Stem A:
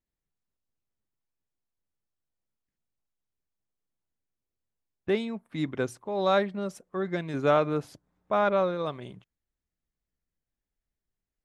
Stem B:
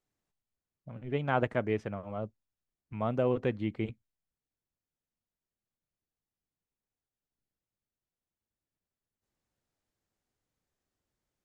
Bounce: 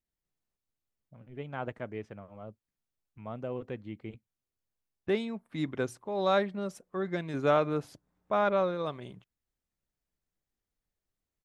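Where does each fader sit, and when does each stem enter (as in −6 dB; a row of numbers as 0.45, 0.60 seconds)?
−2.5, −8.5 decibels; 0.00, 0.25 seconds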